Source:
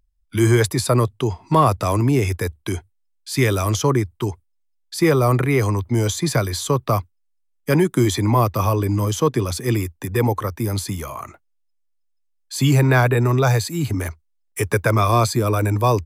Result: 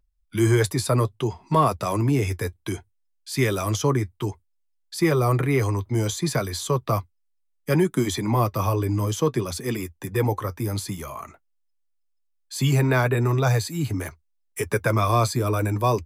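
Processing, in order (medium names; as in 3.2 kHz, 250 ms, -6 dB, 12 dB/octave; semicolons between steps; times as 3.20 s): flange 0.62 Hz, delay 4.3 ms, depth 3 ms, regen -54%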